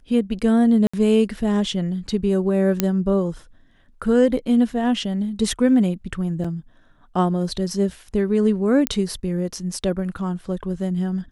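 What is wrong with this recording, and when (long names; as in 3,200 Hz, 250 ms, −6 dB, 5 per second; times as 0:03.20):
0:00.87–0:00.94: drop-out 65 ms
0:02.80: click −3 dBFS
0:06.44–0:06.45: drop-out 5.3 ms
0:08.87: click −4 dBFS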